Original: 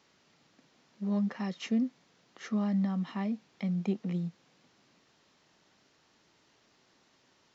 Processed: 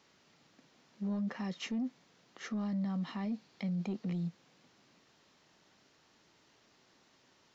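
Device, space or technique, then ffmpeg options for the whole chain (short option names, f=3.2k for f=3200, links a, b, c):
soft clipper into limiter: -filter_complex "[0:a]asettb=1/sr,asplit=3[a][b][c];[a]atrim=end=2.594[d];[b]atrim=start=2.59:end=4.27,asetpts=PTS-STARTPTS,afade=t=in:d=0.004:c=qsin,afade=t=out:st=1.676:d=0.004:c=qsin,equalizer=f=4.4k:w=4.2:g=5.5[e];[c]atrim=start=4.266[f];[d][e]acrossfade=d=0.004:c1=hsin:c2=qsin[g];[g][f]acrossfade=d=0.004:c1=qsin:c2=hsin,asoftclip=type=tanh:threshold=-24dB,alimiter=level_in=6.5dB:limit=-24dB:level=0:latency=1:release=13,volume=-6.5dB"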